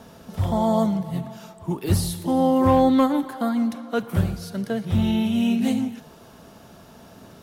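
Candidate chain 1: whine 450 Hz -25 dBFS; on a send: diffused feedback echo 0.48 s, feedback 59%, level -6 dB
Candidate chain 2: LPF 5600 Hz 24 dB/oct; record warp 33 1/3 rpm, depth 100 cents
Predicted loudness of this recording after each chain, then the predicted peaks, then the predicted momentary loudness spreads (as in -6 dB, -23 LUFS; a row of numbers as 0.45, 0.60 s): -21.5, -22.5 LUFS; -5.5, -8.0 dBFS; 11, 13 LU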